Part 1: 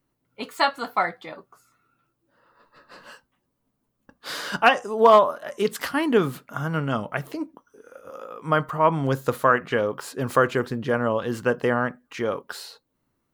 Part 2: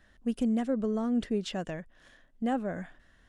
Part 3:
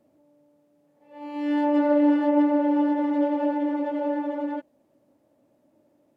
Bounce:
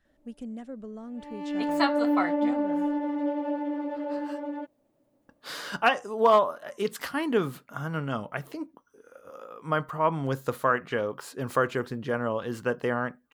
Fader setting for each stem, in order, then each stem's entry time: -5.5, -10.5, -5.5 dB; 1.20, 0.00, 0.05 s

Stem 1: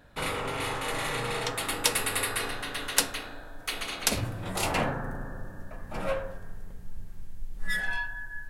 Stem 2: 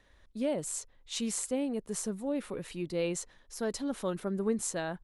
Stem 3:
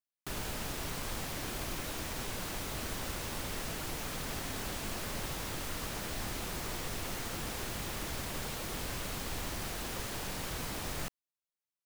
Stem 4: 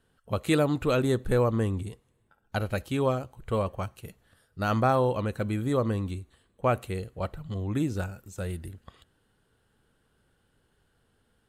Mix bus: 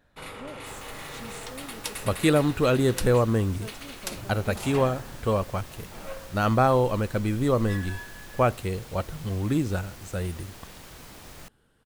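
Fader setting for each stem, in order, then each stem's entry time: -9.0, -11.5, -7.0, +3.0 dB; 0.00, 0.00, 0.40, 1.75 s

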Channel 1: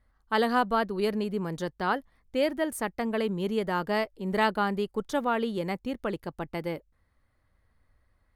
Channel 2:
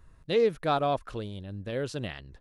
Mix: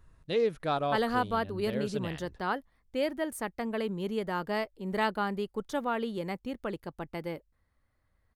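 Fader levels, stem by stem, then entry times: -4.0, -3.5 dB; 0.60, 0.00 s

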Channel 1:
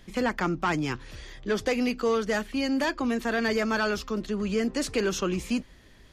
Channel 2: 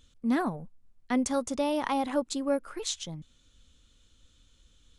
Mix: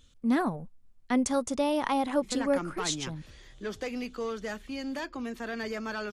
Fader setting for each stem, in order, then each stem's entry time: -9.0, +1.0 dB; 2.15, 0.00 s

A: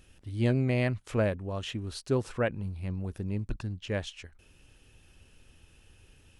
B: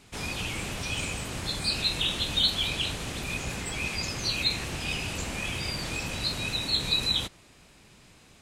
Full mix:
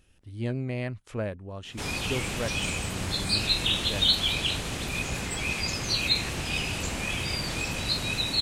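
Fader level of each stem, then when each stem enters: -4.5, +2.0 dB; 0.00, 1.65 s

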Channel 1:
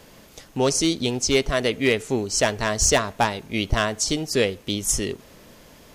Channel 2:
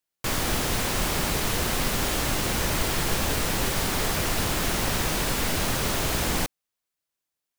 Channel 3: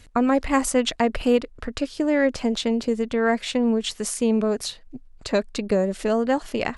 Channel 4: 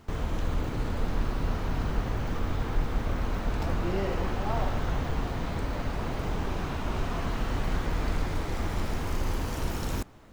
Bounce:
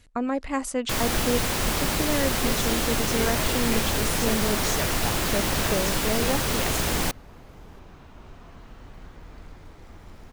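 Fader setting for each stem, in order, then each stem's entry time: -13.5, +0.5, -7.0, -15.5 dB; 1.85, 0.65, 0.00, 1.30 s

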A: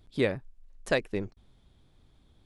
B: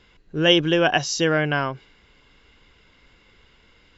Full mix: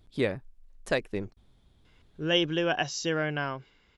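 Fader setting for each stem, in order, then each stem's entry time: -1.0, -8.5 dB; 0.00, 1.85 s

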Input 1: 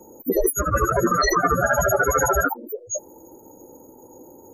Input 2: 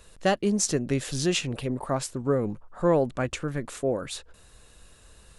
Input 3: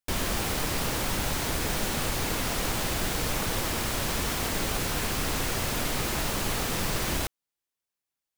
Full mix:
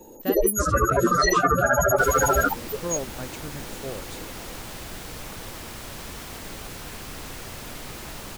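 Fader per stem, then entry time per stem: -0.5, -9.0, -8.5 dB; 0.00, 0.00, 1.90 s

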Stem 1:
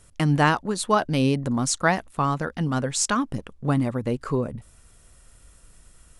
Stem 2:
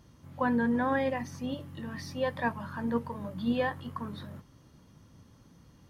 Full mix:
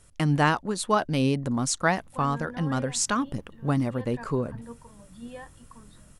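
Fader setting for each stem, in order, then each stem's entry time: -2.5, -12.5 dB; 0.00, 1.75 s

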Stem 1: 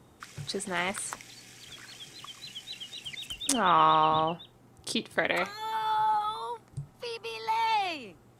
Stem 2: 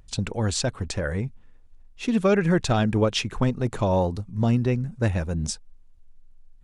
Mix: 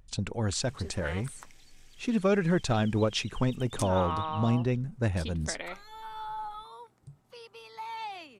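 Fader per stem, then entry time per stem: -11.0, -5.0 dB; 0.30, 0.00 s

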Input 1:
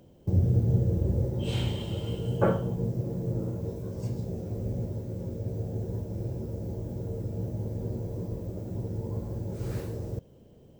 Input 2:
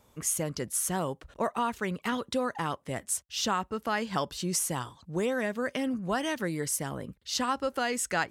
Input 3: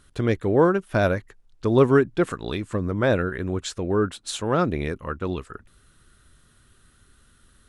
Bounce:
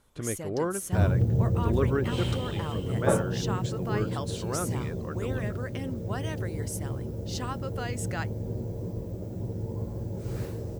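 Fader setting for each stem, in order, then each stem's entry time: 0.0, -7.0, -11.0 dB; 0.65, 0.00, 0.00 s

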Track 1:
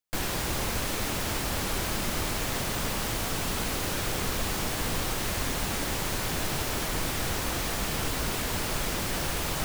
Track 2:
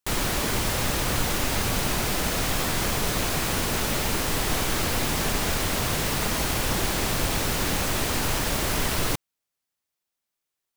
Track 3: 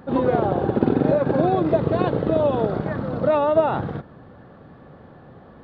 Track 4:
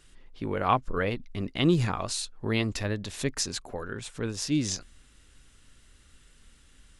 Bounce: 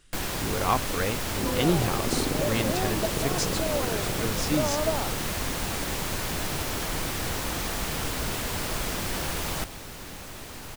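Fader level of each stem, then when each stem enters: -0.5, -15.0, -10.5, -1.0 dB; 0.00, 2.40, 1.30, 0.00 s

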